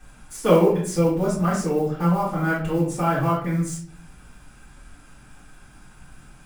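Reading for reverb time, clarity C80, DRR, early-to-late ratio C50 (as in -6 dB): 0.50 s, 8.5 dB, -10.0 dB, 4.5 dB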